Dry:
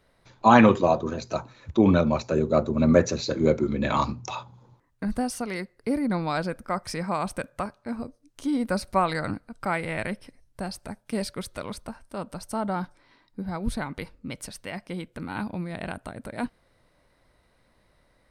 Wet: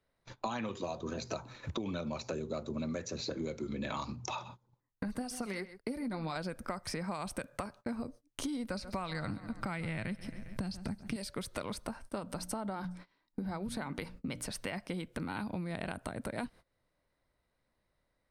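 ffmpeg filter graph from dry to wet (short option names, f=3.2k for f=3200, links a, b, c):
-filter_complex "[0:a]asettb=1/sr,asplit=3[a][b][c];[a]atrim=end=4.164[d];[b]atrim=start=4.16:end=6.36,asetpts=PTS-STARTPTS,afade=t=in:d=0.004:c=qsin,afade=t=out:st=2.196:d=0.004:c=qsin,flanger=delay=0.1:depth=5.8:regen=46:speed=1.9:shape=triangular,aecho=1:1:129:0.112,atrim=end_sample=97020[e];[c]atrim=start=6.356[f];[d][e]acrossfade=d=0.004:c1=hsin:c2=qsin[g];[g][f]acrossfade=d=0.004:c1=qsin:c2=hsin,asettb=1/sr,asplit=3[h][i][j];[h]atrim=end=8.574[k];[i]atrim=start=8.57:end=11.16,asetpts=PTS-STARTPTS,afade=t=in:d=0.004:c=qsin,afade=t=out:st=2.586:d=0.004:c=qsin,acrossover=split=6800[l][m];[m]acompressor=threshold=-58dB:ratio=4:attack=1:release=60[n];[l][n]amix=inputs=2:normalize=0,asubboost=boost=8.5:cutoff=220,aecho=1:1:135|270|405|540:0.0944|0.0481|0.0246|0.0125,atrim=end_sample=114219[o];[j]atrim=start=11.156[p];[k][o]acrossfade=d=0.004:c1=hsin:c2=qsin[q];[q][p]acrossfade=d=0.004:c1=qsin:c2=hsin,asettb=1/sr,asplit=3[r][s][t];[r]atrim=end=12.194[u];[s]atrim=start=12.19:end=14.49,asetpts=PTS-STARTPTS,afade=t=in:d=0.004:c=qsin,afade=t=out:st=2.296:d=0.004:c=qsin,bandreject=f=60:t=h:w=6,bandreject=f=120:t=h:w=6,bandreject=f=180:t=h:w=6,bandreject=f=240:t=h:w=6,bandreject=f=300:t=h:w=6,acompressor=threshold=-31dB:ratio=2:attack=3.2:release=140:knee=1:detection=peak[v];[t]atrim=start=14.486[w];[u][v]acrossfade=d=0.004:c1=hsin:c2=qsin[x];[x][w]acrossfade=d=0.004:c1=qsin:c2=hsin,acrossover=split=110|2700[y][z][aa];[y]acompressor=threshold=-49dB:ratio=4[ab];[z]acompressor=threshold=-32dB:ratio=4[ac];[aa]acompressor=threshold=-41dB:ratio=4[ad];[ab][ac][ad]amix=inputs=3:normalize=0,agate=range=-25dB:threshold=-51dB:ratio=16:detection=peak,acompressor=threshold=-47dB:ratio=4,volume=9.5dB"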